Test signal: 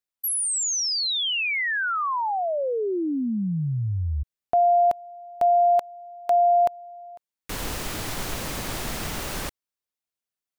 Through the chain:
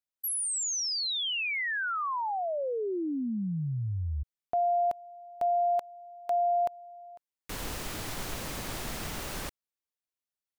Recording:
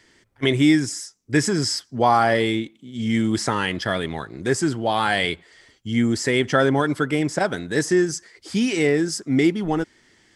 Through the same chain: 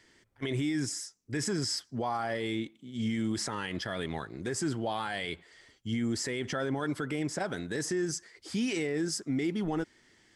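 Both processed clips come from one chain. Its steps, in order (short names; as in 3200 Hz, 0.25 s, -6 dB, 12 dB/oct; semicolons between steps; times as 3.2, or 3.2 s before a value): limiter -17 dBFS; gain -6 dB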